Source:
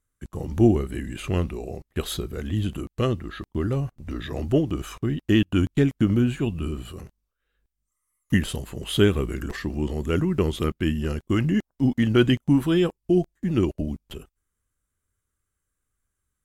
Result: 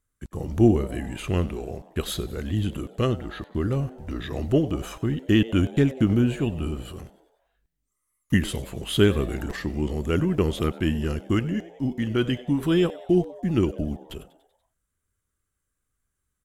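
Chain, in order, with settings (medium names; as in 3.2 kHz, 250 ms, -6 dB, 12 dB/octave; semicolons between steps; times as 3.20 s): 11.39–12.63 s: feedback comb 58 Hz, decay 0.54 s, harmonics odd, mix 50%; on a send: frequency-shifting echo 96 ms, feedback 56%, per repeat +120 Hz, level -19.5 dB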